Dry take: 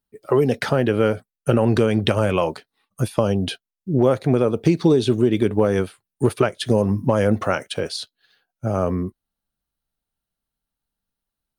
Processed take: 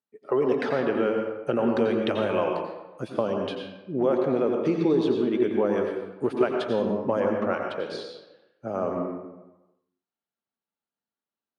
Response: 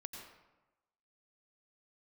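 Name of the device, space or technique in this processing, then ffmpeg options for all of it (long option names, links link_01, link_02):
supermarket ceiling speaker: -filter_complex "[0:a]asettb=1/sr,asplit=3[link_01][link_02][link_03];[link_01]atrim=end=7.204[link_04];[link_02]atrim=start=7.2:end=7.9,asetpts=PTS-STARTPTS,afade=type=in:duration=0.004:curve=qsin,afade=type=out:start_time=0.696:duration=0.004:curve=qsin,lowpass=frequency=2800:poles=1[link_05];[link_03]atrim=start=7.896[link_06];[link_04][link_05]acrossfade=duration=0.004:curve1=hsin:curve2=qsin[link_07];[link_07][link_06]acrossfade=duration=0.004:curve1=qsin:curve2=hsin,highpass=260,lowpass=6000,highshelf=frequency=3600:gain=-10.5[link_08];[1:a]atrim=start_sample=2205[link_09];[link_08][link_09]afir=irnorm=-1:irlink=0"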